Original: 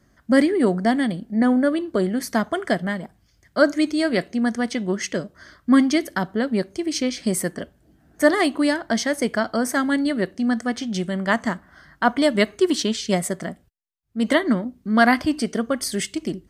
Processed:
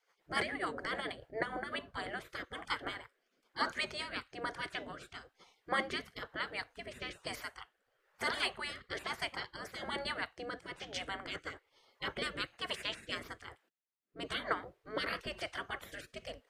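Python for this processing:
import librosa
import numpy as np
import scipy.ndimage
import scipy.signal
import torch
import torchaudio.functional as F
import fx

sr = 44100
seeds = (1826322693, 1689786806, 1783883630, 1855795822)

y = fx.spec_gate(x, sr, threshold_db=-20, keep='weak')
y = fx.bass_treble(y, sr, bass_db=-1, treble_db=-13)
y = fx.rotary_switch(y, sr, hz=7.0, then_hz=1.1, switch_at_s=1.3)
y = y * 10.0 ** (1.5 / 20.0)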